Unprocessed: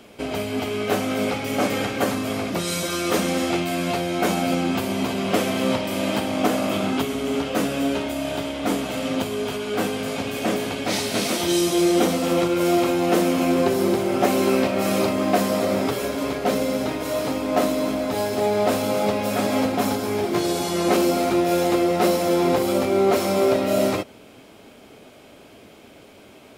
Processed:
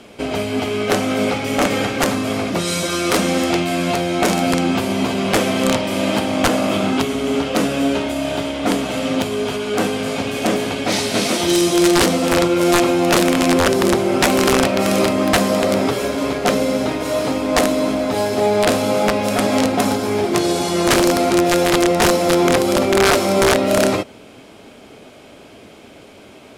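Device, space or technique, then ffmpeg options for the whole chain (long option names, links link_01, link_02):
overflowing digital effects unit: -af "aeval=exprs='(mod(3.76*val(0)+1,2)-1)/3.76':channel_layout=same,lowpass=11000,volume=5dB"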